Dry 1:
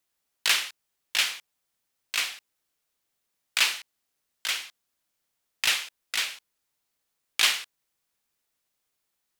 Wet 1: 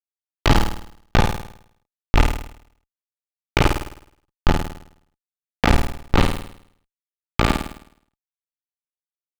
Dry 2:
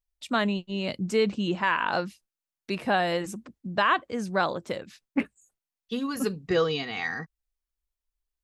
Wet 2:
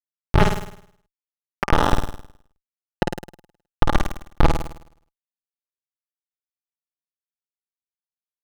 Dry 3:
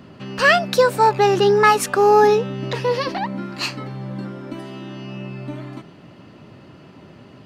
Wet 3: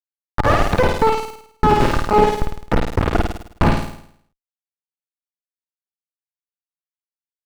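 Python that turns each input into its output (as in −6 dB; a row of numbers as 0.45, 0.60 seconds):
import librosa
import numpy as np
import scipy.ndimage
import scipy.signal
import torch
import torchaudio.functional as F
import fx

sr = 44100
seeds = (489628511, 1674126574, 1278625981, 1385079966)

p1 = fx.tracing_dist(x, sr, depth_ms=0.039)
p2 = scipy.signal.sosfilt(scipy.signal.butter(6, 440.0, 'highpass', fs=sr, output='sos'), p1)
p3 = fx.over_compress(p2, sr, threshold_db=-25.0, ratio=-0.5)
p4 = p2 + (p3 * librosa.db_to_amplitude(2.0))
p5 = fx.schmitt(p4, sr, flips_db=-9.5)
p6 = fx.small_body(p5, sr, hz=(850.0, 1200.0), ring_ms=40, db=7)
p7 = p6 + fx.room_flutter(p6, sr, wall_m=9.0, rt60_s=0.64, dry=0)
p8 = fx.slew_limit(p7, sr, full_power_hz=140.0)
y = p8 * 10.0 ** (-1.5 / 20.0) / np.max(np.abs(p8))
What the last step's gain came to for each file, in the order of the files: +16.0, +14.5, +7.0 decibels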